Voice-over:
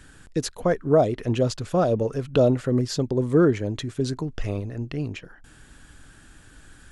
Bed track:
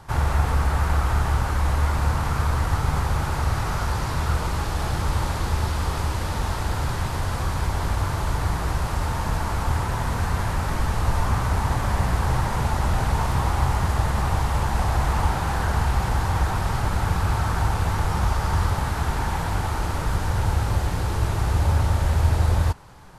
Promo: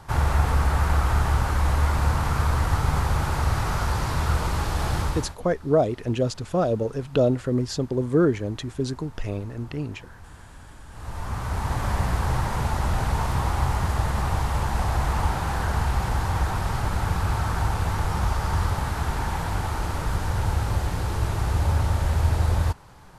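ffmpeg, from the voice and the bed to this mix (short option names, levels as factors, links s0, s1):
-filter_complex "[0:a]adelay=4800,volume=0.841[s0];[1:a]volume=10.6,afade=t=out:st=4.99:d=0.37:silence=0.0749894,afade=t=in:st=10.88:d=0.99:silence=0.0944061[s1];[s0][s1]amix=inputs=2:normalize=0"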